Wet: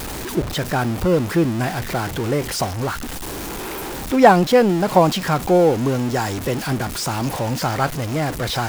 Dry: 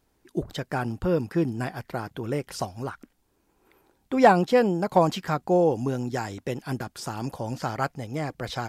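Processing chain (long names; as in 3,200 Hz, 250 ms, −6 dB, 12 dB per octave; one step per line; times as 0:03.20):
converter with a step at zero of −28 dBFS
level +5 dB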